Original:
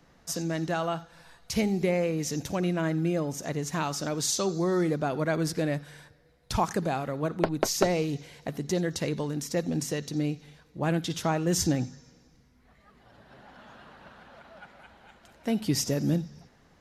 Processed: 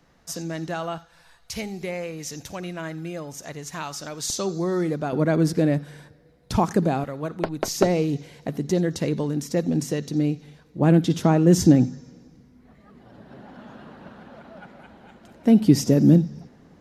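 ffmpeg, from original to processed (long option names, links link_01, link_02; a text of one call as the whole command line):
ffmpeg -i in.wav -af "asetnsamples=nb_out_samples=441:pad=0,asendcmd='0.98 equalizer g -7;4.3 equalizer g 2;5.13 equalizer g 10;7.04 equalizer g -0.5;7.68 equalizer g 7;10.8 equalizer g 13',equalizer=frequency=240:width_type=o:width=2.7:gain=-0.5" out.wav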